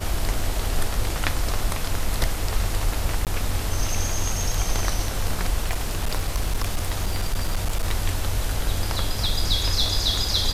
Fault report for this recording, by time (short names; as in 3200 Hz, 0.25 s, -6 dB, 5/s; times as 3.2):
3.25–3.27 gap 18 ms
5.62–7.92 clipped -18 dBFS